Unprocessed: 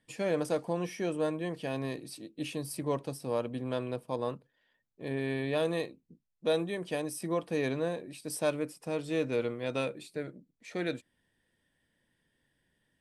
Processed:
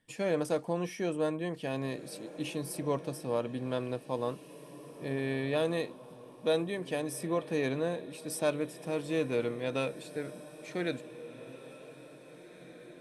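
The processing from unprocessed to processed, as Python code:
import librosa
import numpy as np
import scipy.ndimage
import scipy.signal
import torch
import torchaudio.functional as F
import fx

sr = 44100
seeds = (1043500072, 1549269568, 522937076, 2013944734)

p1 = fx.notch(x, sr, hz=4700.0, q=26.0)
y = p1 + fx.echo_diffused(p1, sr, ms=1952, feedback_pct=43, wet_db=-15, dry=0)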